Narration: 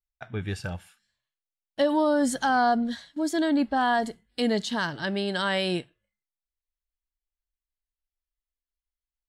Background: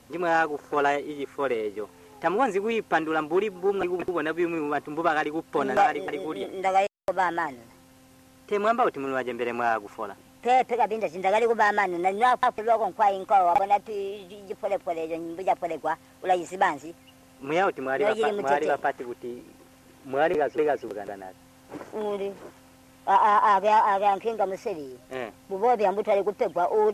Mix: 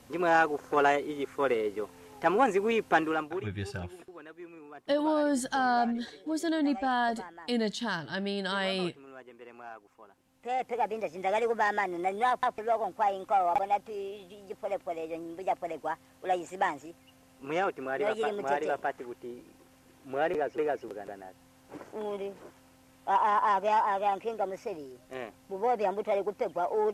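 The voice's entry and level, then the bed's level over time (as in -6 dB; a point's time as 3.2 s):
3.10 s, -4.5 dB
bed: 3.06 s -1 dB
3.62 s -20.5 dB
10.08 s -20.5 dB
10.79 s -6 dB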